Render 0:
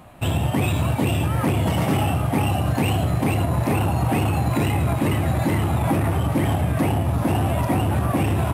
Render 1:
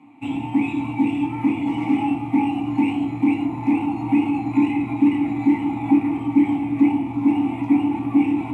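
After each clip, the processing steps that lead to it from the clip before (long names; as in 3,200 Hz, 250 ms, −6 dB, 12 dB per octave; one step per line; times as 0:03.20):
formant filter u
convolution reverb RT60 0.50 s, pre-delay 3 ms, DRR −1 dB
level +8 dB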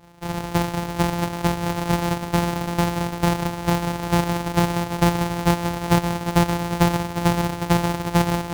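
samples sorted by size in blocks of 256 samples
parametric band 850 Hz +7.5 dB 0.42 octaves
level −2.5 dB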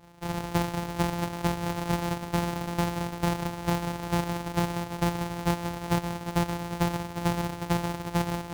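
speech leveller within 4 dB
level −7.5 dB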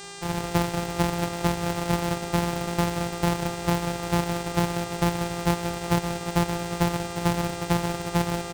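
far-end echo of a speakerphone 190 ms, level −8 dB
hum with harmonics 400 Hz, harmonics 23, −44 dBFS −2 dB per octave
level +3 dB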